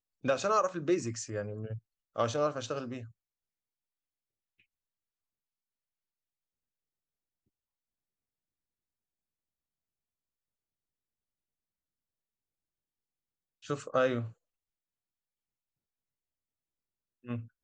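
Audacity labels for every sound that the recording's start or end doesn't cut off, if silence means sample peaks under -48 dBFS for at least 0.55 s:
13.630000	14.320000	sound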